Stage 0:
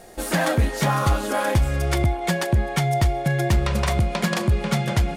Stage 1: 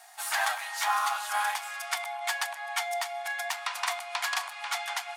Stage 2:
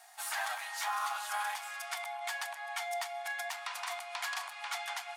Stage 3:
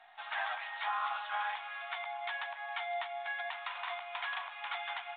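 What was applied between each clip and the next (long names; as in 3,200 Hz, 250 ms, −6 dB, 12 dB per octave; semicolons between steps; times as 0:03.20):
Butterworth high-pass 730 Hz 72 dB per octave; level −2.5 dB
brickwall limiter −21 dBFS, peak gain reduction 7 dB; level −4.5 dB
mu-law 64 kbit/s 8,000 Hz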